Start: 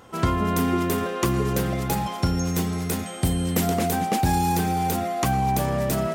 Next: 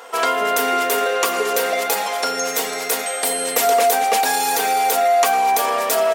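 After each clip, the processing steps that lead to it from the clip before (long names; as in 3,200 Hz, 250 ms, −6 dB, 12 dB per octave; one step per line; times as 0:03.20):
high-pass filter 470 Hz 24 dB per octave
comb filter 4.3 ms, depth 61%
in parallel at +3 dB: brickwall limiter −22.5 dBFS, peak gain reduction 11.5 dB
on the sum: level +3.5 dB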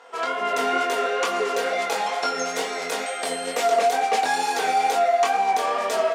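automatic gain control
chorus effect 2.2 Hz, delay 20 ms, depth 4.2 ms
high-frequency loss of the air 72 metres
level −5 dB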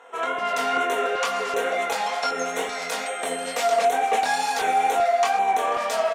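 auto-filter notch square 1.3 Hz 360–4,800 Hz
single-tap delay 492 ms −18.5 dB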